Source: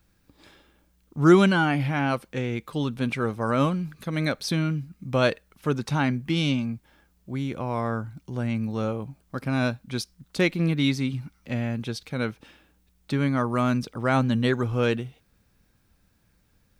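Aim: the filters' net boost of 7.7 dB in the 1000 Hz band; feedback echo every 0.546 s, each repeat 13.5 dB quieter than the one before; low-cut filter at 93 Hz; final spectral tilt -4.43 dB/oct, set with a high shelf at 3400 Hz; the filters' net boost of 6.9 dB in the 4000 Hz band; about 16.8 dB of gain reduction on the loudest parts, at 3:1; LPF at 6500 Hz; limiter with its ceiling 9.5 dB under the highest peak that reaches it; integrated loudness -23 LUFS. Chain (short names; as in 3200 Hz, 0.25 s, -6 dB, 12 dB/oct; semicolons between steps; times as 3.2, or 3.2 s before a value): HPF 93 Hz; LPF 6500 Hz; bell 1000 Hz +9 dB; high shelf 3400 Hz +8.5 dB; bell 4000 Hz +3 dB; compressor 3:1, threshold -33 dBFS; limiter -26.5 dBFS; feedback echo 0.546 s, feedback 21%, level -13.5 dB; gain +14.5 dB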